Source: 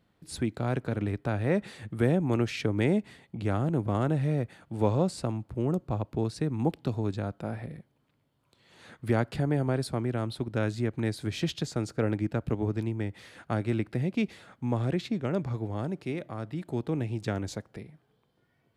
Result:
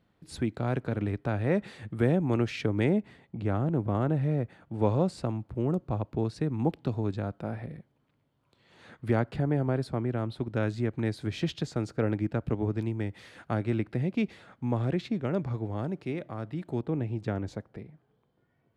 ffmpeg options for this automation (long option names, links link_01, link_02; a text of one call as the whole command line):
ffmpeg -i in.wav -af "asetnsamples=nb_out_samples=441:pad=0,asendcmd='2.89 lowpass f 1800;4.82 lowpass f 3400;9.19 lowpass f 2100;10.38 lowpass f 3600;12.81 lowpass f 7400;13.51 lowpass f 3600;16.81 lowpass f 1500',lowpass=frequency=4300:poles=1" out.wav